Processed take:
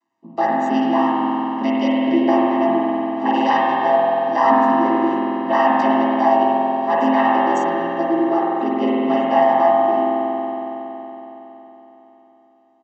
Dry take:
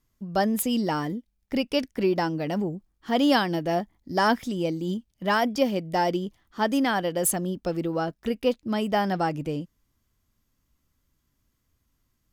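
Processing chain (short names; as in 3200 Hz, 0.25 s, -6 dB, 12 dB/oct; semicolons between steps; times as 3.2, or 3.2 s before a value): chord vocoder minor triad, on A#2; inverse Chebyshev high-pass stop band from 160 Hz, stop band 40 dB; high shelf 2800 Hz -9 dB; comb 1 ms, depth 96%; in parallel at +3 dB: limiter -22 dBFS, peak gain reduction 8.5 dB; on the sum: spring tank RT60 3.9 s, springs 44 ms, chirp 65 ms, DRR -6.5 dB; speed mistake 25 fps video run at 24 fps; gain +3 dB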